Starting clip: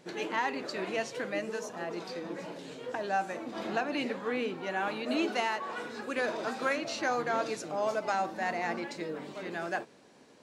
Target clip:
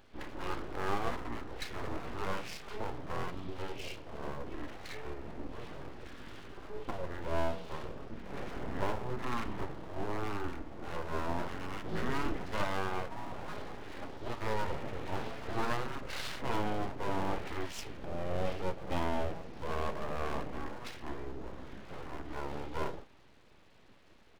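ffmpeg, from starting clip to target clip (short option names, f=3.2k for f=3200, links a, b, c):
-filter_complex "[0:a]asplit=2[a][b];[b]adelay=14,volume=-12dB[c];[a][c]amix=inputs=2:normalize=0,asetrate=18846,aresample=44100,aeval=exprs='abs(val(0))':c=same,highshelf=f=5k:g=7.5,volume=-1dB"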